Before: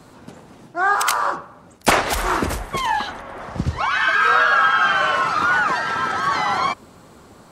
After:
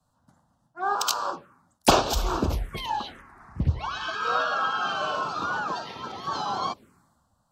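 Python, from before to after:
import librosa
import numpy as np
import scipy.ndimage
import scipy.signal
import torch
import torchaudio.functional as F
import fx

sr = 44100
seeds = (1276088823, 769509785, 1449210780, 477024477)

y = fx.env_phaser(x, sr, low_hz=350.0, high_hz=2000.0, full_db=-17.5)
y = fx.band_widen(y, sr, depth_pct=70)
y = y * 10.0 ** (-4.5 / 20.0)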